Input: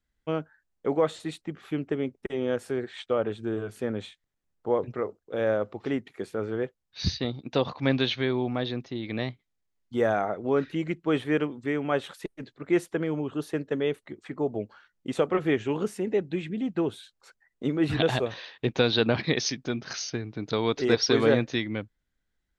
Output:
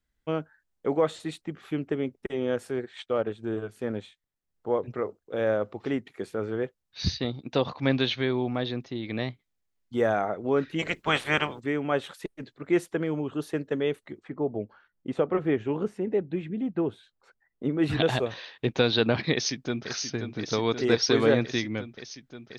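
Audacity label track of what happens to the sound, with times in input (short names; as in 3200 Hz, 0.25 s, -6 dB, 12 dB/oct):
2.610000	4.850000	transient shaper attack -2 dB, sustain -6 dB
10.780000	11.590000	spectral limiter ceiling under each frame's peak by 24 dB
14.200000	17.790000	LPF 1300 Hz 6 dB/oct
19.320000	19.900000	echo throw 0.53 s, feedback 85%, level -8 dB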